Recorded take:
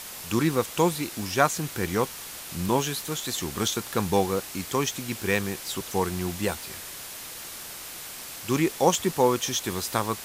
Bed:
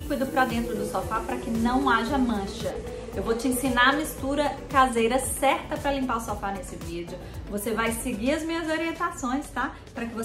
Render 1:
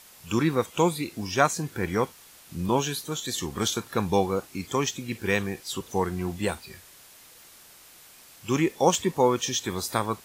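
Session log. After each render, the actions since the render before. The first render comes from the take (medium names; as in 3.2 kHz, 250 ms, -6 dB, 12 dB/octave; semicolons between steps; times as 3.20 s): noise print and reduce 12 dB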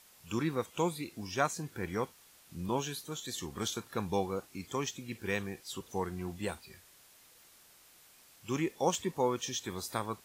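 trim -9 dB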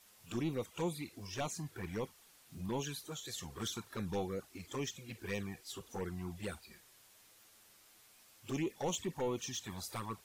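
saturation -29 dBFS, distortion -10 dB; touch-sensitive flanger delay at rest 11.6 ms, full sweep at -32 dBFS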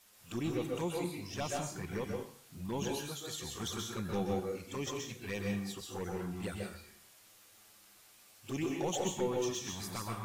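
plate-style reverb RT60 0.51 s, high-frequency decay 0.8×, pre-delay 115 ms, DRR 0 dB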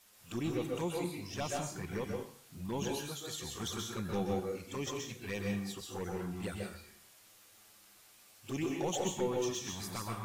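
no audible change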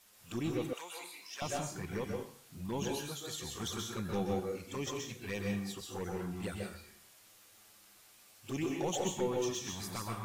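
0.73–1.42 s: high-pass 1.1 kHz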